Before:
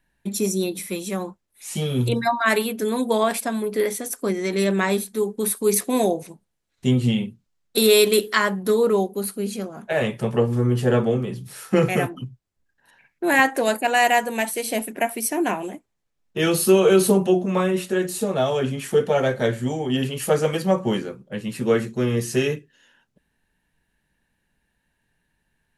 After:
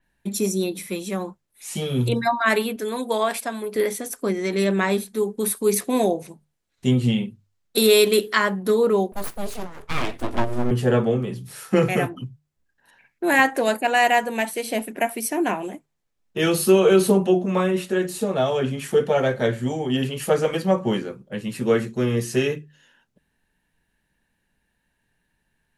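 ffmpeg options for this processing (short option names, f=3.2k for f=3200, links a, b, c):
-filter_complex "[0:a]asettb=1/sr,asplit=3[a][b][c];[a]atrim=end=2.764[d];[b]atrim=start=2.76:end=3.76,asetpts=PTS-STARTPTS,afade=t=in:d=0.004:c=qsin,afade=t=out:st=0.996:d=0.004:c=qsin,highpass=f=440:p=1[e];[c]atrim=start=3.756[f];[d][e]acrossfade=d=0.004:c1=hsin:c2=qsin[g];[g][f]acrossfade=d=0.004:c1=qsin:c2=hsin,asettb=1/sr,asplit=3[h][i][j];[h]atrim=end=9.124[k];[i]atrim=start=9.12:end=10.71,asetpts=PTS-STARTPTS,afade=t=in:d=0.004:c=qsin,afade=t=out:st=1.586:d=0.004:c=qsin,aeval=exprs='abs(val(0))':c=same[l];[j]atrim=start=10.706[m];[k][l]acrossfade=d=0.004:c1=hsin:c2=qsin[n];[n][m]acrossfade=d=0.004:c1=qsin:c2=hsin,bandreject=f=50:t=h:w=6,bandreject=f=100:t=h:w=6,bandreject=f=150:t=h:w=6,adynamicequalizer=threshold=0.00891:dfrequency=5000:dqfactor=0.7:tfrequency=5000:tqfactor=0.7:attack=5:release=100:ratio=0.375:range=3:mode=cutabove:tftype=highshelf"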